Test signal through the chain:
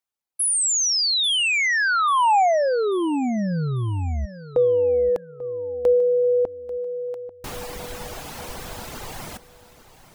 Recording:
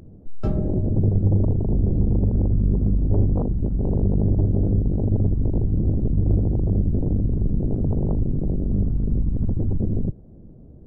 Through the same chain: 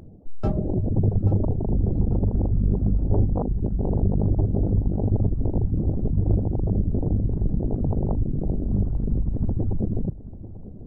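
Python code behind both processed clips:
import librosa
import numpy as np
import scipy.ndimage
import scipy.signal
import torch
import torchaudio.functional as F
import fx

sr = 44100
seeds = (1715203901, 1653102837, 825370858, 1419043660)

y = fx.dereverb_blind(x, sr, rt60_s=0.83)
y = fx.peak_eq(y, sr, hz=810.0, db=5.5, octaves=0.78)
y = fx.echo_feedback(y, sr, ms=841, feedback_pct=40, wet_db=-16.0)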